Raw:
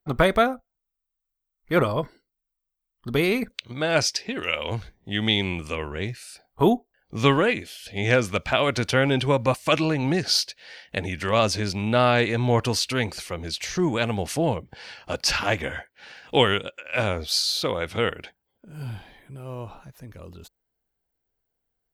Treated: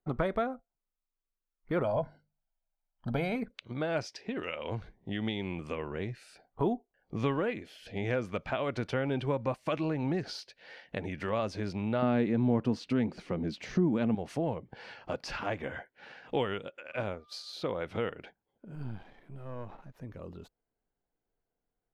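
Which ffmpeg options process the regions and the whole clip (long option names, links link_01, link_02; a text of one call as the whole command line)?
ffmpeg -i in.wav -filter_complex "[0:a]asettb=1/sr,asplit=3[link_01][link_02][link_03];[link_01]atrim=end=1.844[link_04];[link_02]atrim=start=1.84:end=3.36,asetpts=PTS-STARTPTS,afade=type=in:duration=0.004:curve=qsin,afade=type=out:start_time=1.516:duration=0.004:curve=qsin,equalizer=frequency=650:width_type=o:width=1:gain=7,bandreject=frequency=50:width_type=h:width=6,bandreject=frequency=100:width_type=h:width=6,bandreject=frequency=150:width_type=h:width=6,bandreject=frequency=200:width_type=h:width=6,aecho=1:1:1.3:0.78,atrim=end_sample=67032[link_05];[link_03]atrim=start=3.356[link_06];[link_04][link_05]acrossfade=duration=0.004:curve1=hsin:curve2=qsin[link_07];[link_07][link_06]acrossfade=duration=0.004:curve1=qsin:curve2=hsin,asettb=1/sr,asplit=3[link_08][link_09][link_10];[link_08]atrim=end=12.024[link_11];[link_09]atrim=start=12.02:end=14.15,asetpts=PTS-STARTPTS,afade=type=in:duration=0.004:curve=qsin,afade=type=out:start_time=2.126:duration=0.004:curve=qsin,equalizer=frequency=220:width_type=o:width=1.4:gain=13.5,adynamicsmooth=sensitivity=5.5:basefreq=6800[link_12];[link_10]atrim=start=14.146[link_13];[link_11][link_12]acrossfade=duration=0.004:curve1=hsin:curve2=qsin[link_14];[link_14][link_13]acrossfade=duration=0.004:curve1=qsin:curve2=hsin,asettb=1/sr,asplit=3[link_15][link_16][link_17];[link_15]atrim=end=16.924[link_18];[link_16]atrim=start=16.92:end=17.53,asetpts=PTS-STARTPTS,afade=type=in:duration=0.004:curve=qsin,afade=type=out:start_time=0.606:duration=0.004:curve=qsin,agate=range=-33dB:threshold=-22dB:ratio=3:release=100:detection=peak,aeval=exprs='val(0)+0.00141*sin(2*PI*1200*n/s)':channel_layout=same[link_19];[link_17]atrim=start=17.526[link_20];[link_18][link_19]acrossfade=duration=0.004:curve1=hsin:curve2=qsin[link_21];[link_21][link_20]acrossfade=duration=0.004:curve1=qsin:curve2=hsin,asettb=1/sr,asplit=3[link_22][link_23][link_24];[link_22]atrim=end=18.754[link_25];[link_23]atrim=start=18.75:end=19.96,asetpts=PTS-STARTPTS,afade=type=in:duration=0.004:curve=qsin,afade=type=out:start_time=1.206:duration=0.004:curve=qsin,aeval=exprs='if(lt(val(0),0),0.251*val(0),val(0))':channel_layout=same,acompressor=mode=upward:threshold=-57dB:ratio=2.5:attack=3.2:release=140:knee=2.83:detection=peak[link_26];[link_24]atrim=start=19.956[link_27];[link_25][link_26]acrossfade=duration=0.004:curve1=hsin:curve2=qsin[link_28];[link_28][link_27]acrossfade=duration=0.004:curve1=qsin:curve2=hsin,equalizer=frequency=65:width=1.5:gain=-11,acompressor=threshold=-33dB:ratio=2,lowpass=frequency=1100:poles=1" out.wav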